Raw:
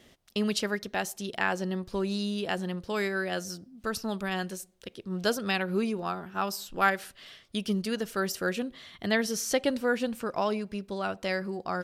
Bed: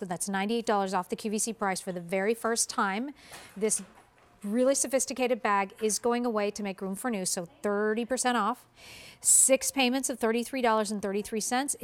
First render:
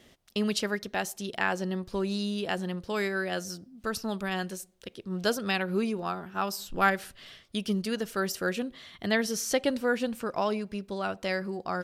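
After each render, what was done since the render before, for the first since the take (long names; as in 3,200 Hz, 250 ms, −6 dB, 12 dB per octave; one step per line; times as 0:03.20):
0:06.59–0:07.42: low-shelf EQ 190 Hz +8 dB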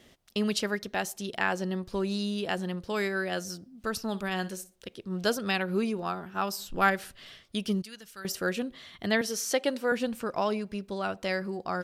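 0:04.08–0:04.76: flutter between parallel walls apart 10.2 metres, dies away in 0.22 s
0:07.82–0:08.25: guitar amp tone stack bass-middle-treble 5-5-5
0:09.21–0:09.92: high-pass filter 280 Hz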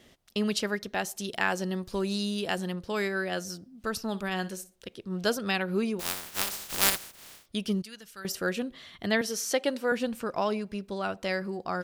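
0:01.16–0:02.73: high-shelf EQ 4,900 Hz +7.5 dB
0:05.99–0:07.45: compressing power law on the bin magnitudes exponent 0.12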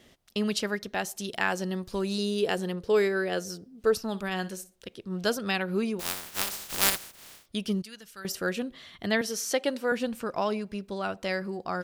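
0:02.18–0:03.97: parametric band 440 Hz +13.5 dB 0.3 octaves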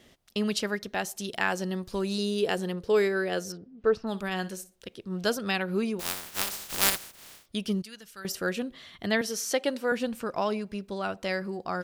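0:03.52–0:04.07: low-pass filter 2,500 Hz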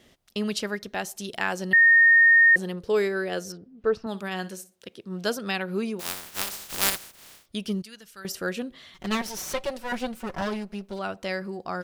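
0:01.73–0:02.56: beep over 1,840 Hz −12.5 dBFS
0:04.06–0:06.08: high-pass filter 120 Hz
0:08.94–0:10.99: lower of the sound and its delayed copy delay 5.3 ms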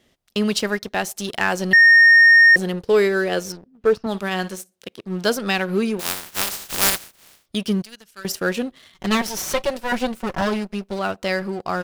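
leveller curve on the samples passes 2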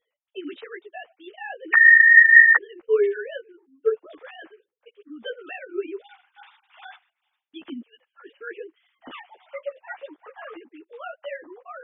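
three sine waves on the formant tracks
string-ensemble chorus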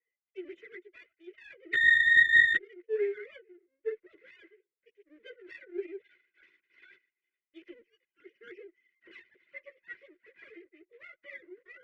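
lower of the sound and its delayed copy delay 2 ms
pair of resonant band-passes 850 Hz, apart 2.5 octaves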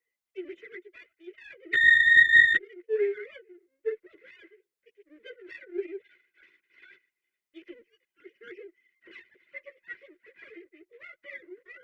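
level +3.5 dB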